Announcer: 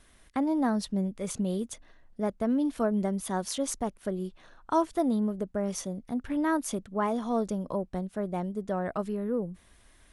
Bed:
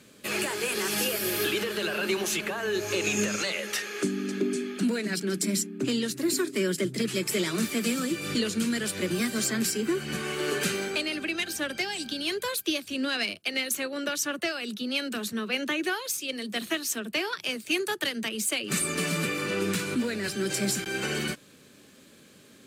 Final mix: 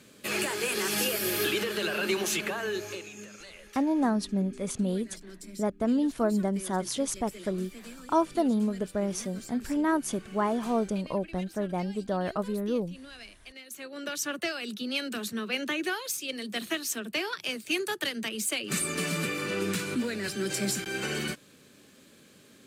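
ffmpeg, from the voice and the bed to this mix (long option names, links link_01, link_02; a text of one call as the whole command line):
ffmpeg -i stem1.wav -i stem2.wav -filter_complex "[0:a]adelay=3400,volume=1dB[link_01];[1:a]volume=15.5dB,afade=type=out:start_time=2.55:duration=0.52:silence=0.133352,afade=type=in:start_time=13.65:duration=0.66:silence=0.158489[link_02];[link_01][link_02]amix=inputs=2:normalize=0" out.wav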